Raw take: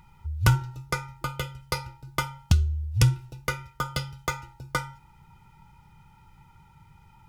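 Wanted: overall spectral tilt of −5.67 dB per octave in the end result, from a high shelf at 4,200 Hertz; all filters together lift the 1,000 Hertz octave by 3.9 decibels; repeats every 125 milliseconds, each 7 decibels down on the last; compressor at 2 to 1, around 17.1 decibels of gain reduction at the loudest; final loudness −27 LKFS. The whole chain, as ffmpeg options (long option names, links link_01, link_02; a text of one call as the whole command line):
ffmpeg -i in.wav -af "equalizer=frequency=1000:width_type=o:gain=5.5,highshelf=frequency=4200:gain=-8,acompressor=threshold=-47dB:ratio=2,aecho=1:1:125|250|375|500|625:0.447|0.201|0.0905|0.0407|0.0183,volume=15.5dB" out.wav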